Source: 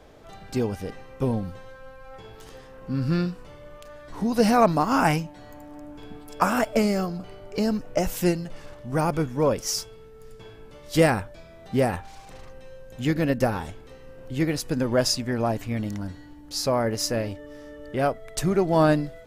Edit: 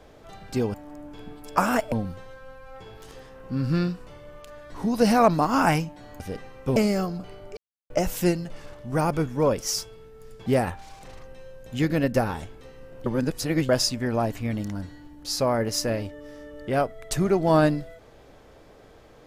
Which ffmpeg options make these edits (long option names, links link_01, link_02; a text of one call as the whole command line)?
ffmpeg -i in.wav -filter_complex "[0:a]asplit=10[link_01][link_02][link_03][link_04][link_05][link_06][link_07][link_08][link_09][link_10];[link_01]atrim=end=0.742[link_11];[link_02]atrim=start=5.578:end=6.762[link_12];[link_03]atrim=start=1.298:end=5.582[link_13];[link_04]atrim=start=0.738:end=1.302[link_14];[link_05]atrim=start=6.758:end=7.57,asetpts=PTS-STARTPTS,afade=type=out:start_time=0.808:duration=0.004:curve=hsin[link_15];[link_06]atrim=start=7.57:end=7.9,asetpts=PTS-STARTPTS,volume=0[link_16];[link_07]atrim=start=7.9:end=10.462,asetpts=PTS-STARTPTS,afade=type=in:duration=0.004:curve=hsin[link_17];[link_08]atrim=start=11.718:end=14.322[link_18];[link_09]atrim=start=14.318:end=14.952,asetpts=PTS-STARTPTS,areverse[link_19];[link_10]atrim=start=14.948[link_20];[link_11][link_12]acrossfade=duration=0.004:curve1=hsin:curve2=hsin[link_21];[link_21][link_13]acrossfade=duration=0.004:curve1=hsin:curve2=hsin[link_22];[link_22][link_14]acrossfade=duration=0.004:curve1=hsin:curve2=hsin[link_23];[link_15][link_16][link_17]concat=n=3:v=0:a=1[link_24];[link_23][link_24]acrossfade=duration=0.004:curve1=hsin:curve2=hsin[link_25];[link_25][link_18]acrossfade=duration=0.004:curve1=hsin:curve2=hsin[link_26];[link_26][link_19]acrossfade=duration=0.004:curve1=hsin:curve2=hsin[link_27];[link_27][link_20]acrossfade=duration=0.004:curve1=hsin:curve2=hsin" out.wav